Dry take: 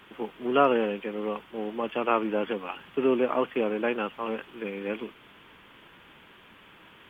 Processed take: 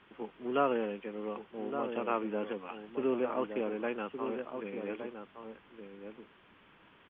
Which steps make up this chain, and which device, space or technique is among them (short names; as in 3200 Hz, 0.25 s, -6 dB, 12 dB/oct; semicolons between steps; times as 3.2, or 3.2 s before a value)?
shout across a valley (air absorption 200 m; outdoor echo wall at 200 m, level -7 dB); gain -7 dB